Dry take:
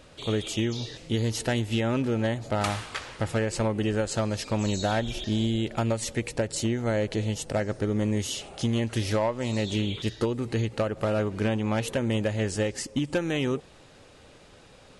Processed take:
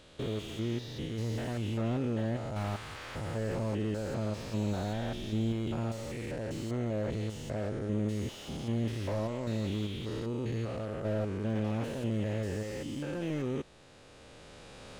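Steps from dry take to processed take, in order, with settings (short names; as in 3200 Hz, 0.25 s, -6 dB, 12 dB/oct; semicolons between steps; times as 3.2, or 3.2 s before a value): stepped spectrum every 0.2 s; recorder AGC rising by 7.8 dB/s; slew limiter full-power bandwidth 30 Hz; gain -4.5 dB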